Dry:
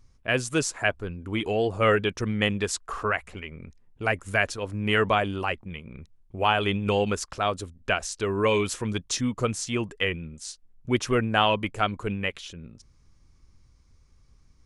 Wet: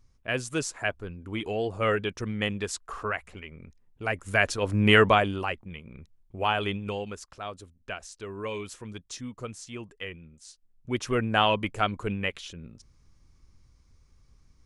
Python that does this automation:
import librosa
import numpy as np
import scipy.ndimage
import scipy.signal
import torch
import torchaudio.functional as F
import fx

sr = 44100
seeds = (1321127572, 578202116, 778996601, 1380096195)

y = fx.gain(x, sr, db=fx.line((4.06, -4.5), (4.81, 7.0), (5.55, -3.5), (6.64, -3.5), (7.08, -11.5), (10.41, -11.5), (11.32, -1.0)))